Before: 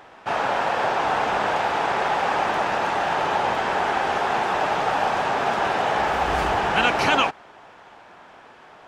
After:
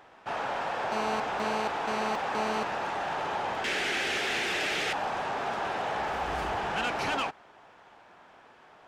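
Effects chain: 3.64–4.93 s: FFT filter 160 Hz 0 dB, 360 Hz +6 dB, 1 kHz -8 dB, 2.1 kHz +13 dB; saturation -15.5 dBFS, distortion -17 dB; 0.92–2.63 s: mobile phone buzz -25 dBFS; trim -8 dB

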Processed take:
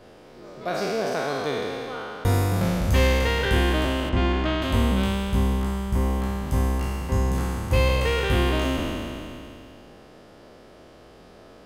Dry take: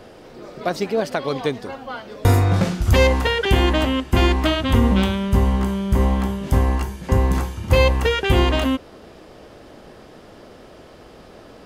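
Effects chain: spectral sustain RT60 2.73 s; 4.09–4.62 s: distance through air 130 m; trim -8.5 dB

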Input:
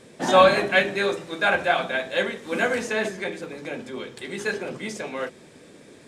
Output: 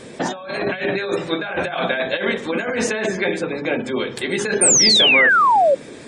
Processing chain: compressor with a negative ratio -29 dBFS, ratio -1; spectral gate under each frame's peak -30 dB strong; hum notches 50/100/150/200 Hz; painted sound fall, 4.61–5.75 s, 520–9300 Hz -20 dBFS; trim +6.5 dB

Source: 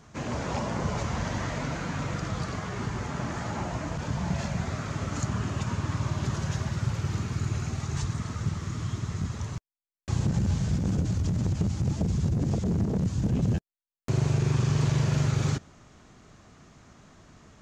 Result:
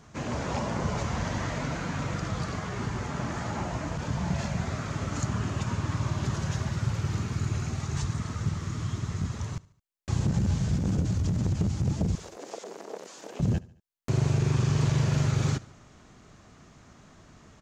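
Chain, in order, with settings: 12.15–13.40 s: high-pass 450 Hz 24 dB/octave; on a send: feedback delay 72 ms, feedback 48%, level -21.5 dB

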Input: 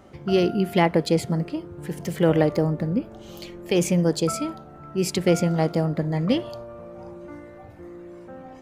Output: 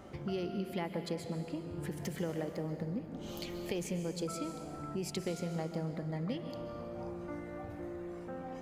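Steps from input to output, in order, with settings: compression 4:1, threshold -36 dBFS, peak gain reduction 18.5 dB; on a send: reverberation RT60 1.9 s, pre-delay 118 ms, DRR 7 dB; on the sum: trim -1.5 dB

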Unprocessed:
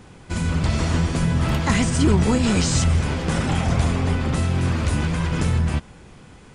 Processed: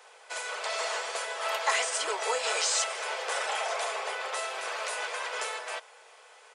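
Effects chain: steep high-pass 490 Hz 48 dB/octave; comb 4.6 ms, depth 33%; 2.19–3.32 s: word length cut 12-bit, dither none; trim -2.5 dB

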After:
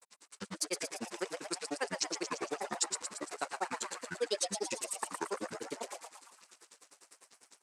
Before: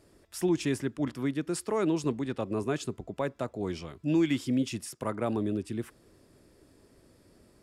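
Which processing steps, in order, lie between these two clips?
jump at every zero crossing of -40.5 dBFS; expander -35 dBFS; treble shelf 2.6 kHz +11 dB; in parallel at +1 dB: compression, threshold -35 dBFS, peak gain reduction 13.5 dB; on the sum: peak limiter -17.5 dBFS, peak gain reduction 5 dB; granulator 55 ms, grains 10 per s, spray 13 ms, pitch spread up and down by 12 st; cabinet simulation 490–9900 Hz, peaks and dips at 630 Hz -9 dB, 1 kHz +4 dB, 3.2 kHz -7 dB, 8 kHz +5 dB; frequency-shifting echo 114 ms, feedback 55%, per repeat +120 Hz, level -5 dB; low-pass that closes with the level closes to 2.9 kHz, closed at -20 dBFS

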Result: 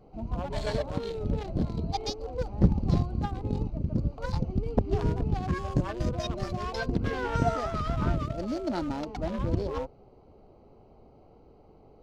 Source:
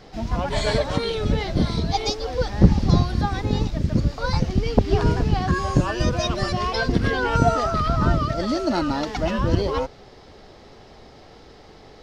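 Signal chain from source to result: local Wiener filter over 25 samples; trim -7.5 dB

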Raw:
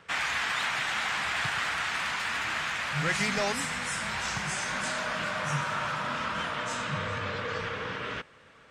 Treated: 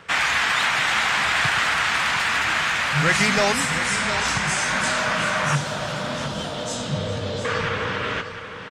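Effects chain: 3.86–4.47 s: low-pass 9.6 kHz 24 dB/octave; 5.55–7.45 s: high-order bell 1.6 kHz -13.5 dB; delay 708 ms -10 dB; trim +9 dB

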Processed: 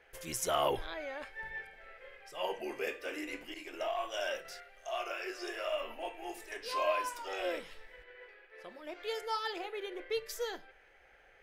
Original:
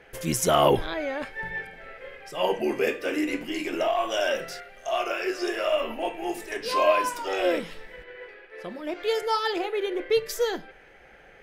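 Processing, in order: 3.54–4.45 s: expander -26 dBFS; peaking EQ 190 Hz -12 dB 1.7 oct; trim -9 dB

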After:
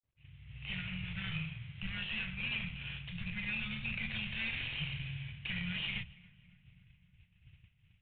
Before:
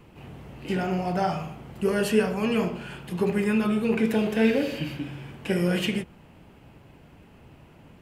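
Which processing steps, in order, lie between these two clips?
Chebyshev shaper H 3 -33 dB, 7 -39 dB, 8 -27 dB, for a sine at -9 dBFS; in parallel at -5 dB: saturation -18.5 dBFS, distortion -14 dB; on the sum: elliptic band-stop 120–2200 Hz, stop band 80 dB; 1.01–1.87 s: doubling 26 ms -2 dB; peak limiter -26.5 dBFS, peak gain reduction 11 dB; level rider gain up to 6 dB; expander -38 dBFS; filtered feedback delay 279 ms, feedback 68%, low-pass 2 kHz, level -20 dB; trim -7 dB; IMA ADPCM 32 kbps 8 kHz

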